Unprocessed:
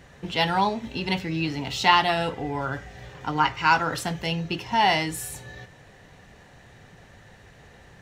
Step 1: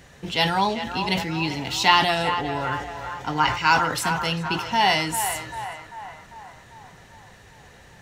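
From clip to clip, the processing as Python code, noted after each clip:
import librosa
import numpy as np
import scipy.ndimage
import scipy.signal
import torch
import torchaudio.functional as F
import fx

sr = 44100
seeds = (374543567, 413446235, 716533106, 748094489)

y = fx.high_shelf(x, sr, hz=3800.0, db=7.5)
y = fx.echo_banded(y, sr, ms=395, feedback_pct=61, hz=1100.0, wet_db=-7)
y = fx.sustainer(y, sr, db_per_s=83.0)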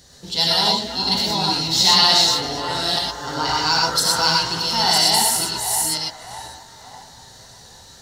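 y = fx.reverse_delay(x, sr, ms=498, wet_db=-1.0)
y = fx.high_shelf_res(y, sr, hz=3300.0, db=9.0, q=3.0)
y = fx.rev_gated(y, sr, seeds[0], gate_ms=140, shape='rising', drr_db=-1.5)
y = y * librosa.db_to_amplitude(-5.0)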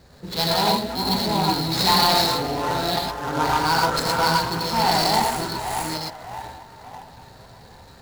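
y = scipy.signal.medfilt(x, 15)
y = y * librosa.db_to_amplitude(3.0)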